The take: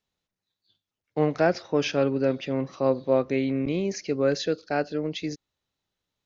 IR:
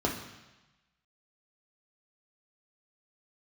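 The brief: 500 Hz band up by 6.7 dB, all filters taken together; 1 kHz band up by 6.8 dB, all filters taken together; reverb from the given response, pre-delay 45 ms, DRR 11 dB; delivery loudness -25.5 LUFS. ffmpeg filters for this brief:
-filter_complex "[0:a]equalizer=f=500:t=o:g=6,equalizer=f=1000:t=o:g=7,asplit=2[s0][s1];[1:a]atrim=start_sample=2205,adelay=45[s2];[s1][s2]afir=irnorm=-1:irlink=0,volume=0.0944[s3];[s0][s3]amix=inputs=2:normalize=0,volume=0.531"

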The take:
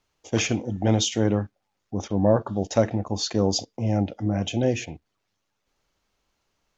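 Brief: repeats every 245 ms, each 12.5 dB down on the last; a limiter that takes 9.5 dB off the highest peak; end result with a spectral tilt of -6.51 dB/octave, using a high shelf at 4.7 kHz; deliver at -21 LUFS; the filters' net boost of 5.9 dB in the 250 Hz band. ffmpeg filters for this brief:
-af "equalizer=f=250:t=o:g=7.5,highshelf=f=4700:g=-7,alimiter=limit=0.224:level=0:latency=1,aecho=1:1:245|490|735:0.237|0.0569|0.0137,volume=1.5"

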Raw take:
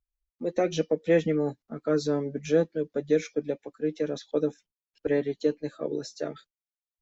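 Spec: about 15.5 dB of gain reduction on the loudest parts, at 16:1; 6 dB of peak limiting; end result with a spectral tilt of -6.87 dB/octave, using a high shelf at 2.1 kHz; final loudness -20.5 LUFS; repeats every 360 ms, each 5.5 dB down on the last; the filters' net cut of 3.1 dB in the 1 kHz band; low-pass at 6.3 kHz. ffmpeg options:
-af "lowpass=6300,equalizer=f=1000:t=o:g=-3.5,highshelf=f=2100:g=-7,acompressor=threshold=0.0224:ratio=16,alimiter=level_in=1.68:limit=0.0631:level=0:latency=1,volume=0.596,aecho=1:1:360|720|1080|1440|1800|2160|2520:0.531|0.281|0.149|0.079|0.0419|0.0222|0.0118,volume=10"

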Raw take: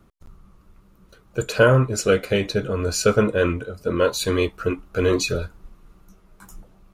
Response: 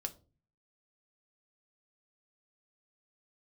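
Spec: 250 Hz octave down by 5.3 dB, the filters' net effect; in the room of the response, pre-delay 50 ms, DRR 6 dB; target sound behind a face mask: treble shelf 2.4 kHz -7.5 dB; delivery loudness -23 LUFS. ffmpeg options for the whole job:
-filter_complex "[0:a]equalizer=f=250:t=o:g=-7.5,asplit=2[s0][s1];[1:a]atrim=start_sample=2205,adelay=50[s2];[s1][s2]afir=irnorm=-1:irlink=0,volume=0.562[s3];[s0][s3]amix=inputs=2:normalize=0,highshelf=f=2400:g=-7.5"

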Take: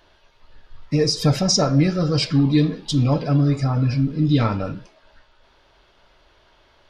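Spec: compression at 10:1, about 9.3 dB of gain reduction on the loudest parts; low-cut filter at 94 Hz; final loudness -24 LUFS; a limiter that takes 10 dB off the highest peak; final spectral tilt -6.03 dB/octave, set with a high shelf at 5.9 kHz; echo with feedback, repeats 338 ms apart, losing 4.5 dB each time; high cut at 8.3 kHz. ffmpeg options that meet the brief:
-af "highpass=94,lowpass=8300,highshelf=f=5900:g=-3.5,acompressor=threshold=0.0794:ratio=10,alimiter=level_in=1.06:limit=0.0631:level=0:latency=1,volume=0.944,aecho=1:1:338|676|1014|1352|1690|2028|2366|2704|3042:0.596|0.357|0.214|0.129|0.0772|0.0463|0.0278|0.0167|0.01,volume=2.24"

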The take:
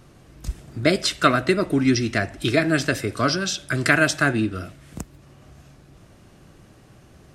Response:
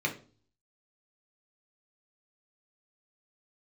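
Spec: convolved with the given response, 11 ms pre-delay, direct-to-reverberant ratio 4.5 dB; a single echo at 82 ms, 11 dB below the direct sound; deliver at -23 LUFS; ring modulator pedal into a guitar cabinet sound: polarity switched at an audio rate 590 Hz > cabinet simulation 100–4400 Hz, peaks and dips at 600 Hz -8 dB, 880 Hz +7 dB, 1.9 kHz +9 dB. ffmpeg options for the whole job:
-filter_complex "[0:a]aecho=1:1:82:0.282,asplit=2[s0][s1];[1:a]atrim=start_sample=2205,adelay=11[s2];[s1][s2]afir=irnorm=-1:irlink=0,volume=0.237[s3];[s0][s3]amix=inputs=2:normalize=0,aeval=exprs='val(0)*sgn(sin(2*PI*590*n/s))':c=same,highpass=100,equalizer=f=600:t=q:w=4:g=-8,equalizer=f=880:t=q:w=4:g=7,equalizer=f=1900:t=q:w=4:g=9,lowpass=f=4400:w=0.5412,lowpass=f=4400:w=1.3066,volume=0.473"

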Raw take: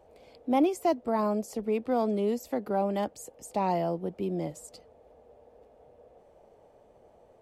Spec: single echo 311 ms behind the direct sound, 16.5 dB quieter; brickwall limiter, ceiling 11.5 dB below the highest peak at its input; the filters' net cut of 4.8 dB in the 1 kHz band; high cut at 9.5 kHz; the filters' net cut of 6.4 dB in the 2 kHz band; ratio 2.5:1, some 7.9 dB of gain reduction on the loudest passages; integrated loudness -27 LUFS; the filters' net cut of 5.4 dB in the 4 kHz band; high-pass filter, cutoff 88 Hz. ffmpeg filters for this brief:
-af "highpass=88,lowpass=9500,equalizer=f=1000:t=o:g=-6,equalizer=f=2000:t=o:g=-5,equalizer=f=4000:t=o:g=-5,acompressor=threshold=0.0251:ratio=2.5,alimiter=level_in=2.82:limit=0.0631:level=0:latency=1,volume=0.355,aecho=1:1:311:0.15,volume=5.62"

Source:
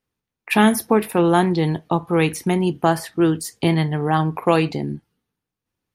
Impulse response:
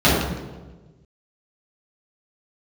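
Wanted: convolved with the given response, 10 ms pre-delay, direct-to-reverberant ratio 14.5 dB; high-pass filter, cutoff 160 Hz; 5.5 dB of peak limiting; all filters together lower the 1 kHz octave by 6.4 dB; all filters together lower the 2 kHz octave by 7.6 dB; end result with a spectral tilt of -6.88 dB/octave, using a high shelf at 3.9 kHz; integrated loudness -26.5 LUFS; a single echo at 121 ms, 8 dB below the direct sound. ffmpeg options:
-filter_complex "[0:a]highpass=160,equalizer=f=1000:t=o:g=-7,equalizer=f=2000:t=o:g=-6,highshelf=f=3900:g=-7,alimiter=limit=0.251:level=0:latency=1,aecho=1:1:121:0.398,asplit=2[s0][s1];[1:a]atrim=start_sample=2205,adelay=10[s2];[s1][s2]afir=irnorm=-1:irlink=0,volume=0.0112[s3];[s0][s3]amix=inputs=2:normalize=0,volume=0.631"

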